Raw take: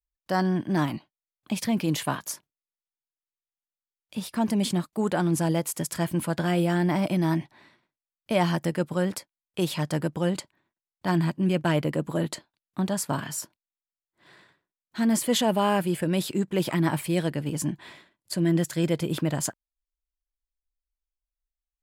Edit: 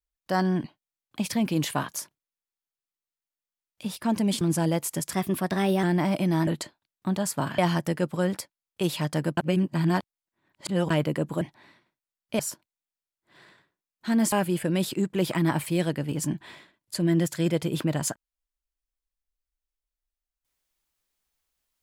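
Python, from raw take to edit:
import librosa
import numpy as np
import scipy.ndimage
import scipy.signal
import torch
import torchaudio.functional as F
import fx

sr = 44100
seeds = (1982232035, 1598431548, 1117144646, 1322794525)

y = fx.edit(x, sr, fx.cut(start_s=0.64, length_s=0.32),
    fx.cut(start_s=4.73, length_s=0.51),
    fx.speed_span(start_s=5.96, length_s=0.78, speed=1.11),
    fx.swap(start_s=7.38, length_s=0.98, other_s=12.19, other_length_s=1.11),
    fx.reverse_span(start_s=10.15, length_s=1.53),
    fx.cut(start_s=15.23, length_s=0.47), tone=tone)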